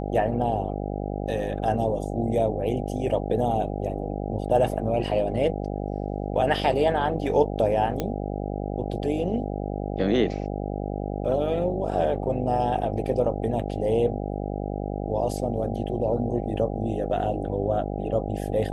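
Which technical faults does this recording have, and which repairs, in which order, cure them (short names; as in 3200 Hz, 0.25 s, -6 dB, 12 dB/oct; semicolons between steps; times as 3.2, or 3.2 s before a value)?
buzz 50 Hz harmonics 16 -30 dBFS
8 pop -13 dBFS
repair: de-click; de-hum 50 Hz, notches 16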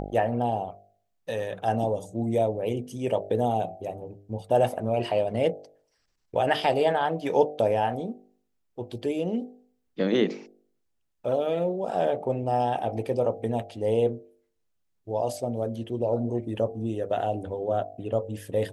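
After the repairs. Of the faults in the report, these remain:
none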